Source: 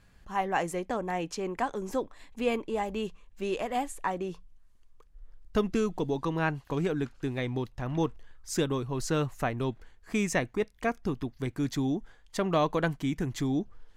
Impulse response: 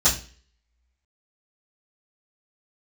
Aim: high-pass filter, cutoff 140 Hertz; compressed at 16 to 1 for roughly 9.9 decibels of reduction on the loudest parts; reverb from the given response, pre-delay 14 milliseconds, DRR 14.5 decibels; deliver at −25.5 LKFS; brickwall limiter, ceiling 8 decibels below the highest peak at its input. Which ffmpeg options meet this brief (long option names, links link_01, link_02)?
-filter_complex "[0:a]highpass=140,acompressor=threshold=-32dB:ratio=16,alimiter=level_in=4dB:limit=-24dB:level=0:latency=1,volume=-4dB,asplit=2[link_01][link_02];[1:a]atrim=start_sample=2205,adelay=14[link_03];[link_02][link_03]afir=irnorm=-1:irlink=0,volume=-30dB[link_04];[link_01][link_04]amix=inputs=2:normalize=0,volume=14dB"